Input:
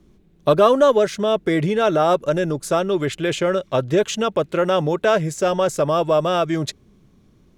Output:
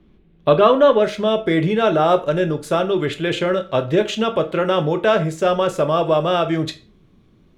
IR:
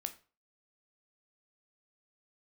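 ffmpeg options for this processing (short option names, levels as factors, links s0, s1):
-filter_complex "[0:a]asetnsamples=n=441:p=0,asendcmd='1.04 highshelf g -6',highshelf=f=4600:t=q:w=1.5:g=-14[s0];[1:a]atrim=start_sample=2205[s1];[s0][s1]afir=irnorm=-1:irlink=0,volume=1.33"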